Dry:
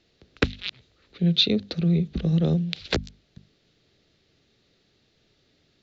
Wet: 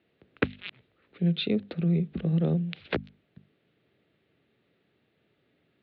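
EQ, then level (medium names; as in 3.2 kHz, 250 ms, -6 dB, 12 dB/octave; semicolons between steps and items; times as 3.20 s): high-pass 120 Hz 12 dB/octave; low-pass 2.9 kHz 24 dB/octave; distance through air 53 m; -2.5 dB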